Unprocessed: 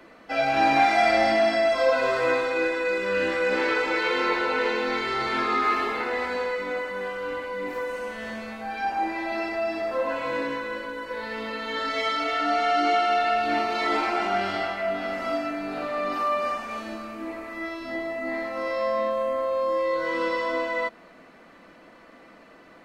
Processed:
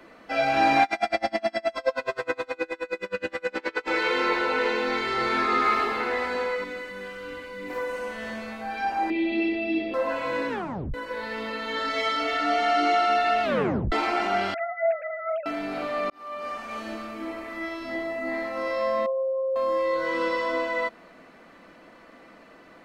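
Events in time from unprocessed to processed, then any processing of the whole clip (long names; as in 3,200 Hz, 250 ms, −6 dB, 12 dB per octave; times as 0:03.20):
0:00.83–0:03.89: tremolo with a sine in dB 9.5 Hz, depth 33 dB
0:04.82–0:05.49: delay throw 350 ms, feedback 50%, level −7.5 dB
0:06.64–0:07.70: parametric band 790 Hz −11 dB 1.8 octaves
0:09.10–0:09.94: drawn EQ curve 140 Hz 0 dB, 310 Hz +11 dB, 870 Hz −14 dB, 1,500 Hz −20 dB, 2,200 Hz +2 dB, 3,200 Hz +9 dB, 7,500 Hz −27 dB, 11,000 Hz −17 dB
0:10.49: tape stop 0.45 s
0:11.67–0:12.39: delay throw 470 ms, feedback 85%, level −10 dB
0:13.43: tape stop 0.49 s
0:14.54–0:15.46: three sine waves on the formant tracks
0:16.10–0:16.87: fade in
0:19.06–0:19.56: expanding power law on the bin magnitudes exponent 3.7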